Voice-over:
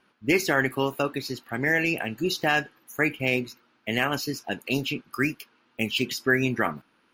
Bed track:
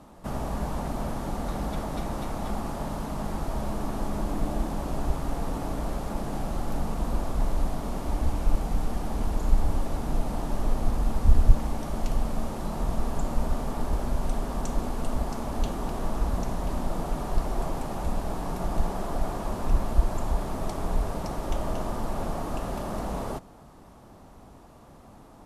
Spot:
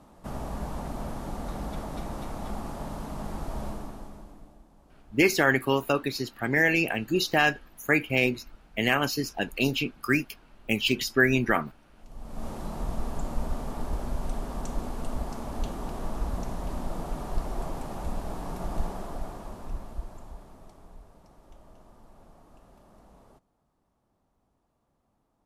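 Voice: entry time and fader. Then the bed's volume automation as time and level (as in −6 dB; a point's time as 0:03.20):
4.90 s, +1.0 dB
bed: 0:03.67 −4 dB
0:04.64 −27.5 dB
0:11.94 −27.5 dB
0:12.47 −4 dB
0:18.83 −4 dB
0:21.08 −24 dB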